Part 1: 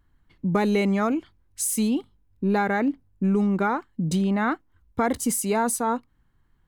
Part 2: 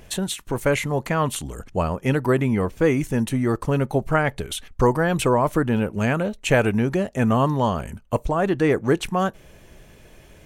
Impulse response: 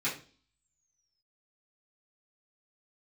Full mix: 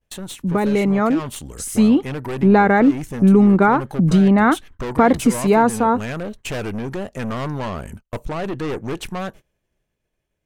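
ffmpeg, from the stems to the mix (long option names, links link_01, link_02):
-filter_complex "[0:a]lowpass=frequency=2000:poles=1,dynaudnorm=framelen=190:gausssize=11:maxgain=5dB,volume=2.5dB,asplit=2[link_01][link_02];[1:a]agate=range=-33dB:threshold=-45dB:ratio=3:detection=peak,aeval=exprs='(tanh(15.8*val(0)+0.5)-tanh(0.5))/15.8':channel_layout=same,volume=-2dB[link_03];[link_02]apad=whole_len=461118[link_04];[link_03][link_04]sidechaincompress=threshold=-18dB:ratio=8:attack=11:release=100[link_05];[link_01][link_05]amix=inputs=2:normalize=0,agate=range=-23dB:threshold=-41dB:ratio=16:detection=peak,dynaudnorm=framelen=390:gausssize=7:maxgain=4dB"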